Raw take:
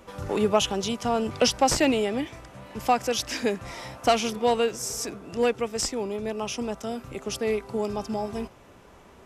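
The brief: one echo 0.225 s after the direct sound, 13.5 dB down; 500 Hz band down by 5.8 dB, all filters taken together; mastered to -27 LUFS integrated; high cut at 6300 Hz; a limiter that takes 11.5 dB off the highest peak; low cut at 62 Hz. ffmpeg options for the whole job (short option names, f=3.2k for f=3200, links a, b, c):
-af "highpass=62,lowpass=6.3k,equalizer=f=500:t=o:g=-7,alimiter=limit=-22.5dB:level=0:latency=1,aecho=1:1:225:0.211,volume=6dB"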